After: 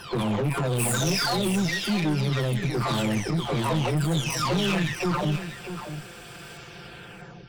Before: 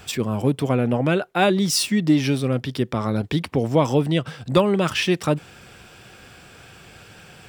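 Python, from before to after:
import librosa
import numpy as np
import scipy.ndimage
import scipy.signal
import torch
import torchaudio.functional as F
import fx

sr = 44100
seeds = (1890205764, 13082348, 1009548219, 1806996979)

p1 = fx.spec_delay(x, sr, highs='early', ms=910)
p2 = fx.dynamic_eq(p1, sr, hz=470.0, q=1.1, threshold_db=-35.0, ratio=4.0, max_db=-6)
p3 = fx.over_compress(p2, sr, threshold_db=-29.0, ratio=-0.5)
p4 = p2 + F.gain(torch.from_numpy(p3), -3.0).numpy()
p5 = fx.cheby_harmonics(p4, sr, harmonics=(8,), levels_db=(-20,), full_scale_db=-8.0)
p6 = np.clip(10.0 ** (19.0 / 20.0) * p5, -1.0, 1.0) / 10.0 ** (19.0 / 20.0)
p7 = p6 + fx.echo_single(p6, sr, ms=641, db=-10.0, dry=0)
y = F.gain(torch.from_numpy(p7), -1.5).numpy()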